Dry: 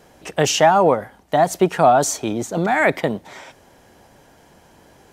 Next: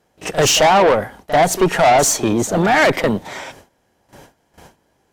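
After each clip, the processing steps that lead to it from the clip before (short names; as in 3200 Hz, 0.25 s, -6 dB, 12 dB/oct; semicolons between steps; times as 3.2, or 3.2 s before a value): tube stage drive 18 dB, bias 0.3; gate with hold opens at -40 dBFS; pre-echo 40 ms -13.5 dB; gain +9 dB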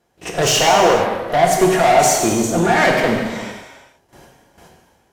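non-linear reverb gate 0.49 s falling, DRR -0.5 dB; gain -3.5 dB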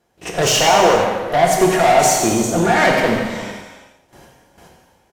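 feedback echo 85 ms, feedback 51%, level -12 dB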